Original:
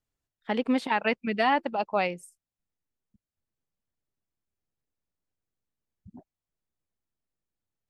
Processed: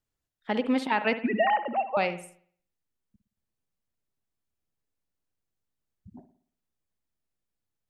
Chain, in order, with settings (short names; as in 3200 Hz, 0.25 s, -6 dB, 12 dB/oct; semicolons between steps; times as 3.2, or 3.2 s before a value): 1.2–1.97 sine-wave speech; reverb, pre-delay 57 ms, DRR 11 dB